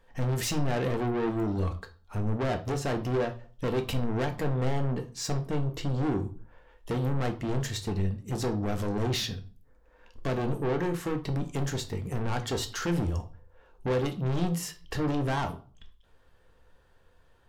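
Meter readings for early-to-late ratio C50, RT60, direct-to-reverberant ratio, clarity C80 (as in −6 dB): 14.0 dB, 0.40 s, 6.0 dB, 19.5 dB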